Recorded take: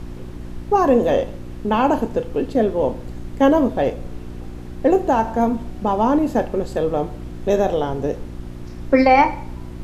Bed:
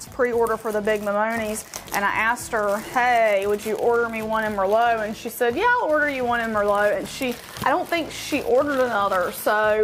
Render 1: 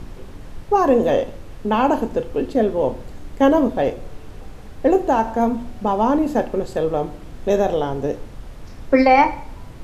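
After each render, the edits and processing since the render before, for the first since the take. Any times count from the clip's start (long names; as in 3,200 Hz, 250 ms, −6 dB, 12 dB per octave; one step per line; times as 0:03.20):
hum removal 60 Hz, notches 6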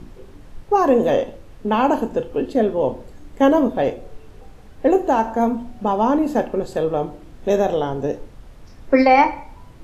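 noise reduction from a noise print 6 dB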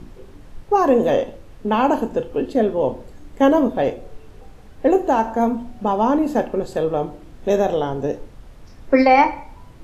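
no processing that can be heard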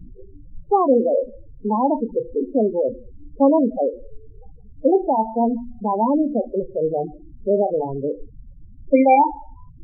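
tape wow and flutter 19 cents
spectral peaks only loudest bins 8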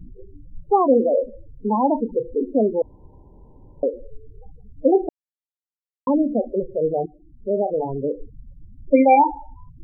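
0:02.82–0:03.83: fill with room tone
0:05.09–0:06.07: silence
0:07.06–0:07.91: fade in, from −13 dB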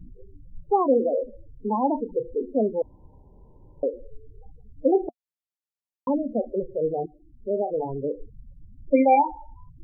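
flanger 0.34 Hz, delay 1.1 ms, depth 1.9 ms, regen −71%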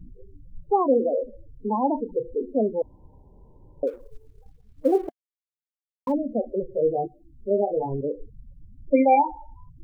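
0:03.87–0:06.12: mu-law and A-law mismatch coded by A
0:06.73–0:08.01: double-tracking delay 15 ms −3 dB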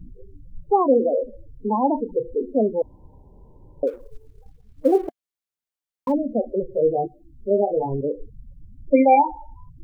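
level +3 dB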